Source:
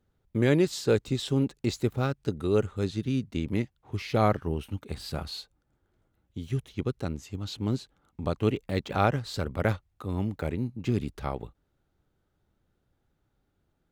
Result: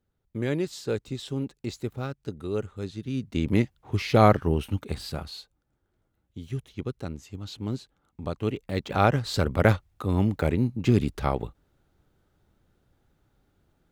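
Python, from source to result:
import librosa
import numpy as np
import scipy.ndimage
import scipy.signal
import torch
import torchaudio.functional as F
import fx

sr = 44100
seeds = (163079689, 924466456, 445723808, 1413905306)

y = fx.gain(x, sr, db=fx.line((3.03, -5.0), (3.48, 6.0), (4.82, 6.0), (5.31, -2.5), (8.51, -2.5), (9.37, 6.5)))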